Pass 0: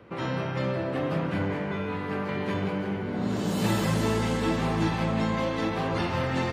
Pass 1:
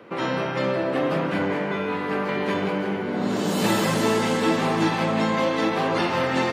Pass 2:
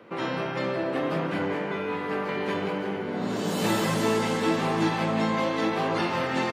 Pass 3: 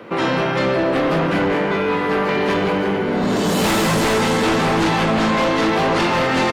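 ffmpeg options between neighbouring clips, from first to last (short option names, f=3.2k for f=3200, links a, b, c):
-af "highpass=220,volume=6.5dB"
-filter_complex "[0:a]asplit=2[a][b];[b]adelay=18,volume=-12dB[c];[a][c]amix=inputs=2:normalize=0,volume=-4dB"
-af "aeval=exprs='0.251*sin(PI/2*3.16*val(0)/0.251)':c=same,volume=-1.5dB"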